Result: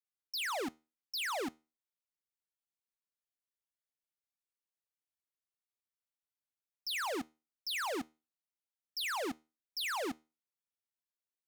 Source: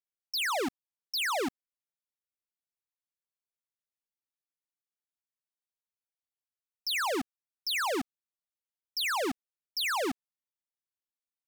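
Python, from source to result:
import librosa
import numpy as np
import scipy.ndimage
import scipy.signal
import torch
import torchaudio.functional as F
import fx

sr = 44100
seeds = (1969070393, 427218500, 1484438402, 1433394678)

y = fx.comb_fb(x, sr, f0_hz=78.0, decay_s=0.3, harmonics='all', damping=0.0, mix_pct=30)
y = F.gain(torch.from_numpy(y), -4.0).numpy()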